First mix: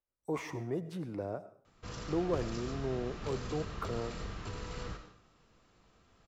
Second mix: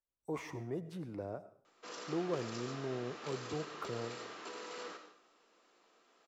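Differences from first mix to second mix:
speech -4.0 dB; background: add high-pass 310 Hz 24 dB/octave

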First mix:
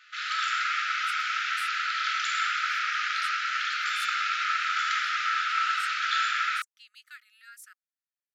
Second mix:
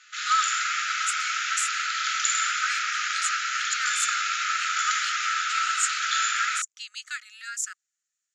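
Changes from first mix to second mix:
speech +12.0 dB; master: add resonant low-pass 7 kHz, resonance Q 8

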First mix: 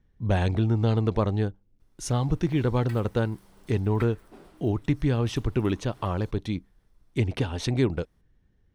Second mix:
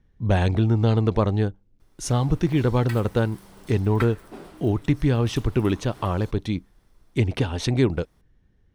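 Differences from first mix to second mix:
speech +3.5 dB; background +9.0 dB

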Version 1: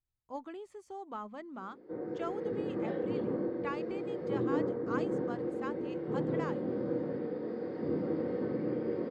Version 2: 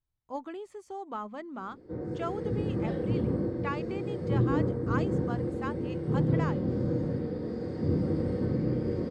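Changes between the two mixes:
speech +4.5 dB; background: remove band-pass 300–2800 Hz

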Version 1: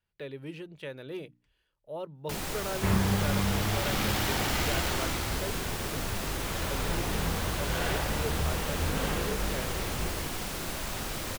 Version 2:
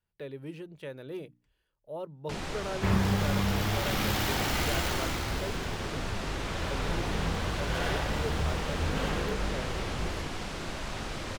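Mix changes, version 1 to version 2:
speech: add peaking EQ 2.9 kHz -5 dB 1.9 oct; first sound: add distance through air 84 m

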